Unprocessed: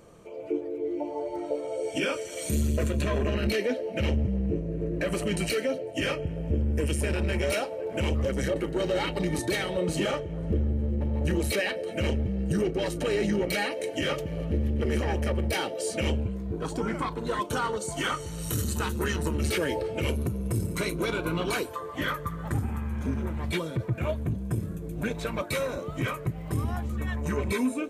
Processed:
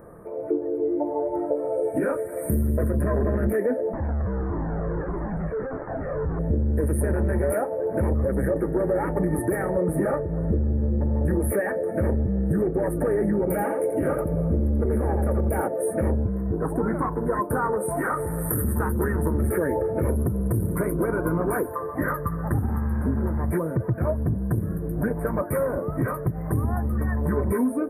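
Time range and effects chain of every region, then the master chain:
3.93–6.39 s: one-bit comparator + tape spacing loss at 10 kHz 40 dB + Shepard-style flanger falling 1.6 Hz
13.38–15.68 s: peaking EQ 2.9 kHz +6 dB 0.34 oct + band-stop 1.8 kHz, Q 5.8 + delay 85 ms -6 dB
17.72–18.63 s: bass shelf 220 Hz -8 dB + level flattener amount 50%
whole clip: Chebyshev band-stop 1.8–9.8 kHz, order 4; dynamic bell 2 kHz, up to -5 dB, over -47 dBFS, Q 0.72; compression, threshold -27 dBFS; trim +8 dB

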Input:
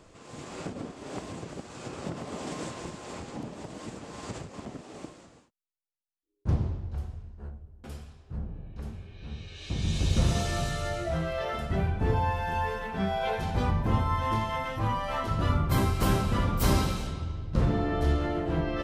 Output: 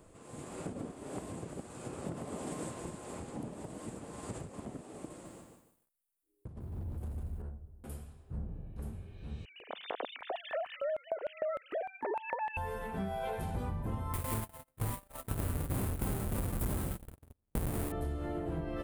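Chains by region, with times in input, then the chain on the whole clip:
5.10–7.42 s: compressor with a negative ratio -37 dBFS + overload inside the chain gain 35 dB + bit-crushed delay 150 ms, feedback 35%, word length 12-bit, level -3 dB
9.45–12.57 s: formants replaced by sine waves + LFO high-pass square 3.3 Hz 590–2800 Hz
14.13–17.92 s: square wave that keeps the level + gate -25 dBFS, range -49 dB
whole clip: FFT filter 490 Hz 0 dB, 5.8 kHz -9 dB, 9.3 kHz +9 dB; compression, threshold -30 dBFS; trim -3 dB

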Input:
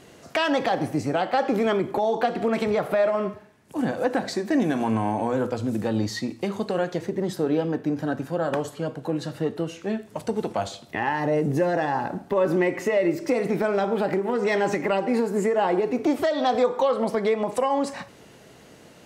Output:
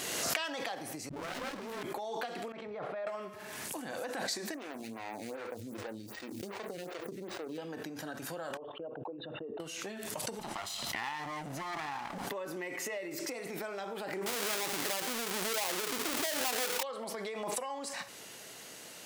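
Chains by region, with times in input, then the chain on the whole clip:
1.09–1.83 s: phase dispersion highs, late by 140 ms, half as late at 450 Hz + sliding maximum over 33 samples
2.52–3.07 s: compressor with a negative ratio -34 dBFS + tape spacing loss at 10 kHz 34 dB + tape noise reduction on one side only decoder only
4.54–7.58 s: median filter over 41 samples + lamp-driven phase shifter 2.6 Hz
8.57–9.60 s: resonances exaggerated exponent 2 + gate -41 dBFS, range -30 dB + rippled Chebyshev low-pass 3.7 kHz, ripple 9 dB
10.39–12.27 s: comb filter that takes the minimum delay 1 ms + treble shelf 9.5 kHz -9 dB
14.26–16.83 s: square wave that keeps the level + loudspeaker Doppler distortion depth 0.68 ms
whole clip: compression 6:1, threshold -35 dBFS; tilt EQ +3.5 dB/octave; swell ahead of each attack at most 24 dB/s; trim -1 dB

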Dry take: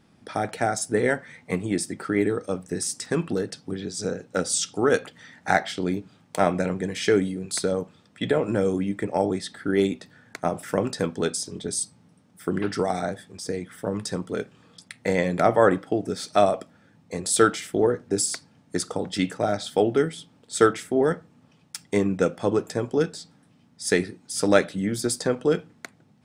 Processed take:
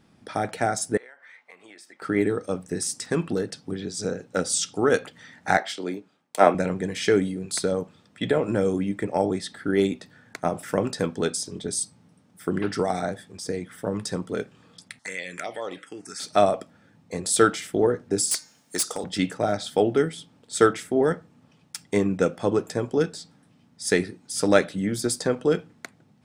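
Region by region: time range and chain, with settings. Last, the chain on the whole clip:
0.97–2.02 s: high-pass 1 kHz + peaking EQ 9.6 kHz -15 dB 2 oct + compression 12:1, threshold -43 dBFS
5.57–6.55 s: high-pass 300 Hz + three bands expanded up and down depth 70%
14.99–16.20 s: frequency weighting ITU-R 468 + touch-sensitive phaser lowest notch 420 Hz, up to 1.6 kHz, full sweep at -16.5 dBFS + compression 2:1, threshold -34 dBFS
18.31–19.04 s: RIAA curve recording + de-hum 305 Hz, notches 24 + overload inside the chain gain 19.5 dB
whole clip: none

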